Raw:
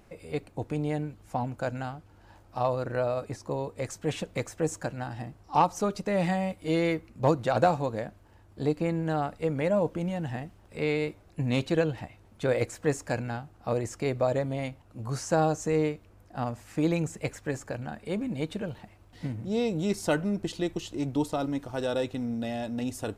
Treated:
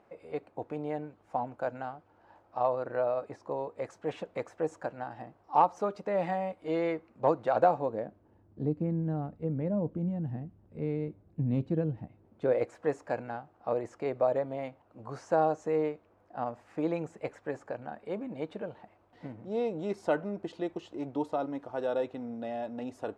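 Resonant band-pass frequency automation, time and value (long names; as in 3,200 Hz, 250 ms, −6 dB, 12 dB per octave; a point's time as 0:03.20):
resonant band-pass, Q 0.84
0:07.59 740 Hz
0:08.72 170 Hz
0:11.99 170 Hz
0:12.67 700 Hz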